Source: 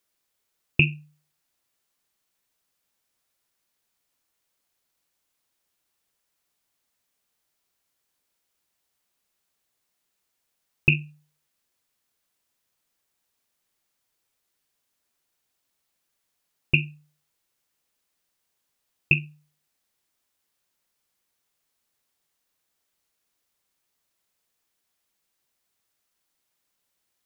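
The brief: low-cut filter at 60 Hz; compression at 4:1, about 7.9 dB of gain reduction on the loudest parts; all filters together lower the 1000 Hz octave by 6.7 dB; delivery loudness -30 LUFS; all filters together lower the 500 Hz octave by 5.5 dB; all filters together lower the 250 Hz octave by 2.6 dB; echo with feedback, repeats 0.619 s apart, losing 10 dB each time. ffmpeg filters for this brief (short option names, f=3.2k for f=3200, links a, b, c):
-af "highpass=60,equalizer=f=250:t=o:g=-5,equalizer=f=500:t=o:g=-4.5,equalizer=f=1k:t=o:g=-7,acompressor=threshold=-28dB:ratio=4,aecho=1:1:619|1238|1857|2476:0.316|0.101|0.0324|0.0104,volume=9dB"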